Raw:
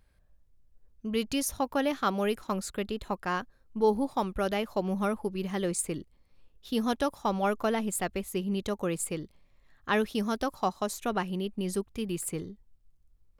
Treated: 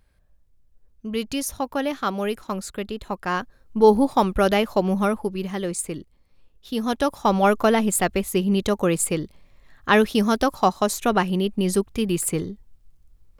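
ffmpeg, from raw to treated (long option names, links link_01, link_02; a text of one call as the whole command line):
ffmpeg -i in.wav -af "volume=17.5dB,afade=type=in:start_time=3.07:duration=0.86:silence=0.421697,afade=type=out:start_time=4.52:duration=1.09:silence=0.421697,afade=type=in:start_time=6.81:duration=0.54:silence=0.446684" out.wav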